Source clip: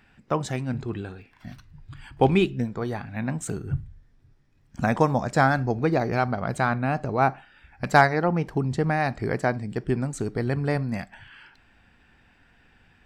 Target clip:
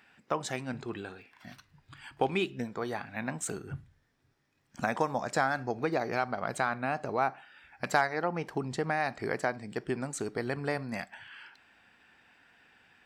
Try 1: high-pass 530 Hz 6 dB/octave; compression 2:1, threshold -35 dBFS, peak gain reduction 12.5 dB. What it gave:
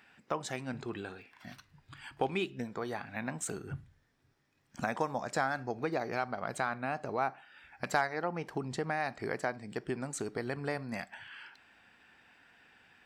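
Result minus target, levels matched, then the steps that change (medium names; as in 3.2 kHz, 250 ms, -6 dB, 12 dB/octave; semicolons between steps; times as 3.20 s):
compression: peak gain reduction +3.5 dB
change: compression 2:1, threshold -28 dBFS, peak gain reduction 9.5 dB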